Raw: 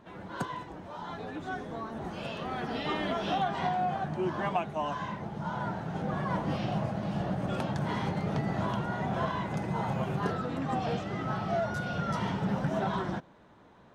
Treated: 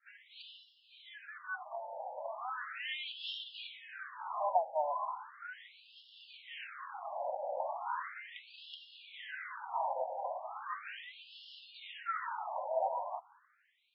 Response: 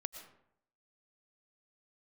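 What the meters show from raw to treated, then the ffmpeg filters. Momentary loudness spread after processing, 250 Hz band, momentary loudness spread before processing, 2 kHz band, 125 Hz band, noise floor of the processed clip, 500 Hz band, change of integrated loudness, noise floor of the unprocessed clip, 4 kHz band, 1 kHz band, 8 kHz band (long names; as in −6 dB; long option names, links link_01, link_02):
17 LU, below −40 dB, 8 LU, −5.5 dB, below −40 dB, −68 dBFS, −6.5 dB, −7.0 dB, −57 dBFS, −2.5 dB, −5.0 dB, below −25 dB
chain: -af "agate=range=-33dB:threshold=-53dB:ratio=3:detection=peak,afftfilt=real='re*between(b*sr/1024,680*pow(3900/680,0.5+0.5*sin(2*PI*0.37*pts/sr))/1.41,680*pow(3900/680,0.5+0.5*sin(2*PI*0.37*pts/sr))*1.41)':imag='im*between(b*sr/1024,680*pow(3900/680,0.5+0.5*sin(2*PI*0.37*pts/sr))/1.41,680*pow(3900/680,0.5+0.5*sin(2*PI*0.37*pts/sr))*1.41)':win_size=1024:overlap=0.75,volume=1dB"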